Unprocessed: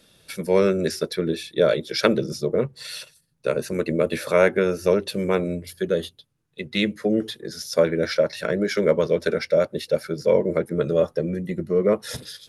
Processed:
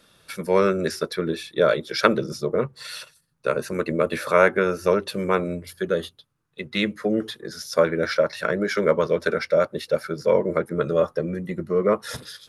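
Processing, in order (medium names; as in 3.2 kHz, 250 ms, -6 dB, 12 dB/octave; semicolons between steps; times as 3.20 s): peaking EQ 1.2 kHz +9.5 dB 1 oct; trim -2 dB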